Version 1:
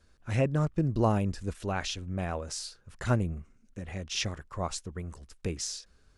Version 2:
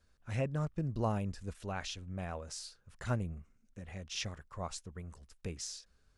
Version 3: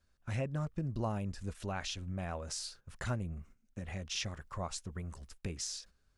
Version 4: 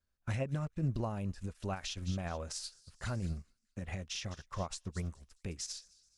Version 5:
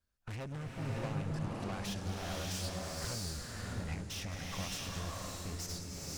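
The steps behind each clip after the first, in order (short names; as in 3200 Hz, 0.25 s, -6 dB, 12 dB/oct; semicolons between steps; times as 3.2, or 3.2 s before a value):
bell 330 Hz -4.5 dB 0.57 oct; gain -7 dB
gate -59 dBFS, range -10 dB; notch 460 Hz, Q 12; compressor 2:1, threshold -45 dBFS, peak gain reduction 9.5 dB; gain +6.5 dB
limiter -32.5 dBFS, peak gain reduction 9 dB; thin delay 0.213 s, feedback 49%, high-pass 3200 Hz, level -11 dB; upward expander 2.5:1, over -50 dBFS; gain +8.5 dB
thin delay 0.103 s, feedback 80%, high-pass 4900 Hz, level -13 dB; tube stage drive 45 dB, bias 0.75; bloom reverb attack 0.64 s, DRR -3.5 dB; gain +5 dB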